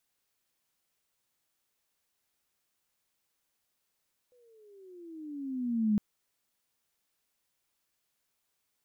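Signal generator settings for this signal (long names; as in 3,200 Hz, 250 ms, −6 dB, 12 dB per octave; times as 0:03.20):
pitch glide with a swell sine, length 1.66 s, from 502 Hz, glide −15.5 semitones, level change +39.5 dB, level −22 dB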